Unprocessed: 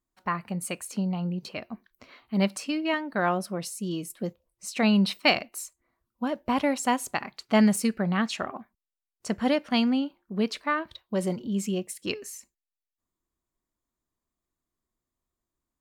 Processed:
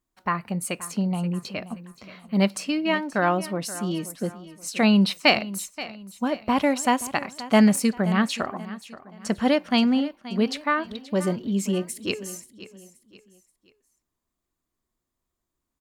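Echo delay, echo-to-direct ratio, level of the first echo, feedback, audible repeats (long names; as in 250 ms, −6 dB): 528 ms, −15.5 dB, −16.0 dB, 37%, 3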